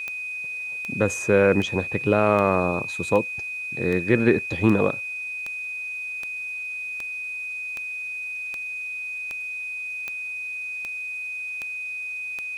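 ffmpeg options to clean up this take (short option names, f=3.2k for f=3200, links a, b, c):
-af "adeclick=t=4,bandreject=f=2.5k:w=30,agate=range=-21dB:threshold=-24dB"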